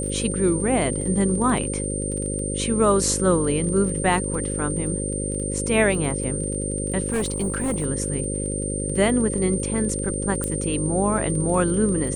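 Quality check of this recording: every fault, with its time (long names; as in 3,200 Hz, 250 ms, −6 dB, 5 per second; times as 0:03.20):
mains buzz 50 Hz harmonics 11 −28 dBFS
surface crackle 23 per second −30 dBFS
whistle 8,900 Hz −29 dBFS
0:07.10–0:07.86: clipping −19.5 dBFS
0:10.44: click −12 dBFS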